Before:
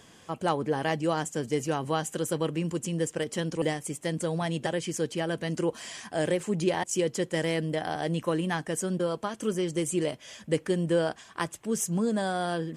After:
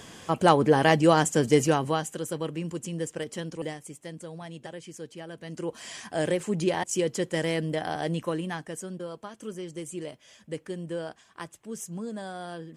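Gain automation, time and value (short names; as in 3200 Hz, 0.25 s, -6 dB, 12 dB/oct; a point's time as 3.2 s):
1.62 s +8 dB
2.16 s -3 dB
3.25 s -3 dB
4.26 s -11 dB
5.35 s -11 dB
5.93 s +0.5 dB
8.06 s +0.5 dB
8.97 s -8.5 dB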